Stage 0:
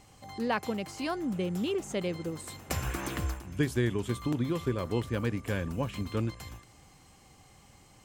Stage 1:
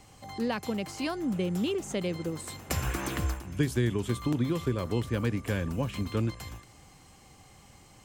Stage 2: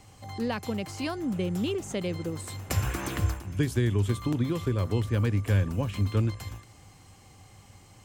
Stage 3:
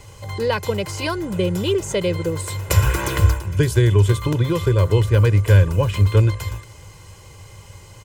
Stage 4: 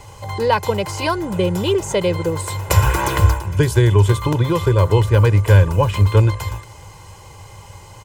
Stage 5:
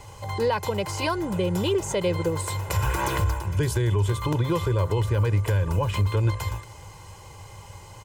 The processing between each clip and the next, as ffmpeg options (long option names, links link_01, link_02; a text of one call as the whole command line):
ffmpeg -i in.wav -filter_complex "[0:a]acrossover=split=290|3000[link_01][link_02][link_03];[link_02]acompressor=threshold=-33dB:ratio=6[link_04];[link_01][link_04][link_03]amix=inputs=3:normalize=0,volume=2.5dB" out.wav
ffmpeg -i in.wav -af "equalizer=frequency=100:width=6.5:gain=13" out.wav
ffmpeg -i in.wav -af "aecho=1:1:2:0.79,volume=8.5dB" out.wav
ffmpeg -i in.wav -af "equalizer=frequency=860:width_type=o:width=0.66:gain=9,volume=1.5dB" out.wav
ffmpeg -i in.wav -af "alimiter=limit=-11dB:level=0:latency=1:release=110,volume=-4dB" out.wav